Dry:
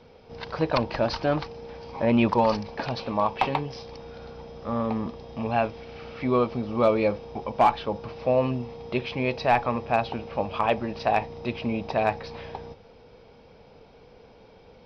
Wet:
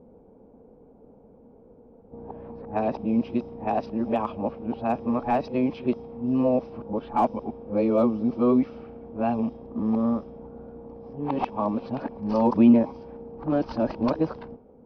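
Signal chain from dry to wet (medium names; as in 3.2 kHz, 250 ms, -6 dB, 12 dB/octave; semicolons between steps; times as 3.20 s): reverse the whole clip; ten-band graphic EQ 125 Hz -4 dB, 250 Hz +11 dB, 2 kHz -8 dB, 4 kHz -8 dB; level-controlled noise filter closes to 810 Hz, open at -16 dBFS; trim -3 dB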